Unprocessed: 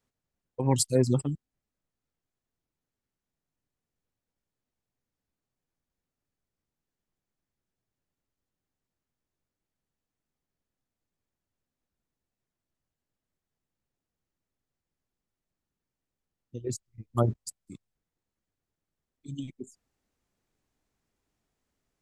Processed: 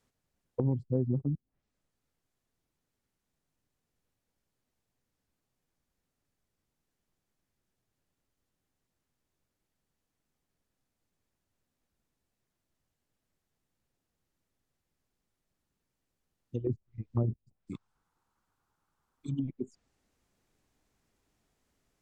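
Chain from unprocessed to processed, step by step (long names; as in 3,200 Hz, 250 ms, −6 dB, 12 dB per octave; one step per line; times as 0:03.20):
0:17.73–0:19.43: flat-topped bell 1,100 Hz +12.5 dB 1.1 octaves
treble cut that deepens with the level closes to 350 Hz, closed at −31 dBFS
downward compressor 6 to 1, threshold −30 dBFS, peak gain reduction 11 dB
level +4.5 dB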